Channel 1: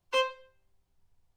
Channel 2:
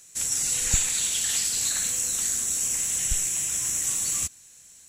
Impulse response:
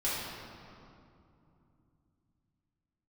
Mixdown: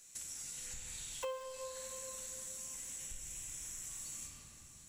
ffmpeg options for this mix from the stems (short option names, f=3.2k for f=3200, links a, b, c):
-filter_complex "[0:a]equalizer=f=630:t=o:w=1.4:g=12,acrusher=bits=7:dc=4:mix=0:aa=0.000001,adelay=1100,volume=-4.5dB,asplit=2[a][b];[b]volume=-13.5dB[c];[1:a]acompressor=threshold=-32dB:ratio=6,volume=-12.5dB,asplit=2[d][e];[e]volume=-3dB[f];[2:a]atrim=start_sample=2205[g];[c][f]amix=inputs=2:normalize=0[h];[h][g]afir=irnorm=-1:irlink=0[i];[a][d][i]amix=inputs=3:normalize=0,acompressor=threshold=-43dB:ratio=4"